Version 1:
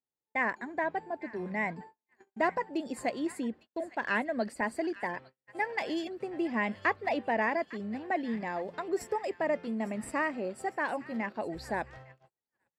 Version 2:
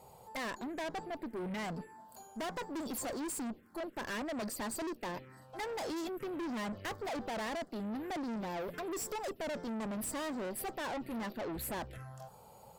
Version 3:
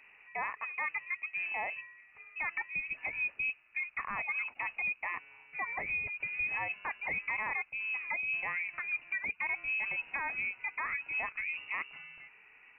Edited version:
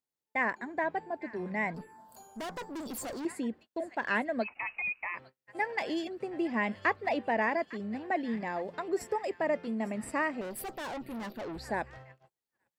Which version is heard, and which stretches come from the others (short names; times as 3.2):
1
1.74–3.25 from 2
4.44–5.17 from 3, crossfade 0.06 s
10.41–11.58 from 2